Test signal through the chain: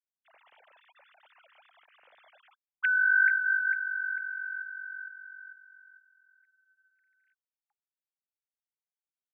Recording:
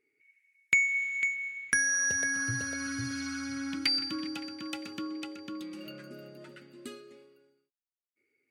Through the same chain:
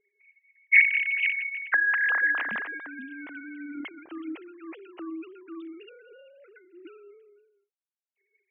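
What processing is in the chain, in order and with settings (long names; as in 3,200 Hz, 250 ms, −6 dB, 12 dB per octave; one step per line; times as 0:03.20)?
three sine waves on the formant tracks
level +4 dB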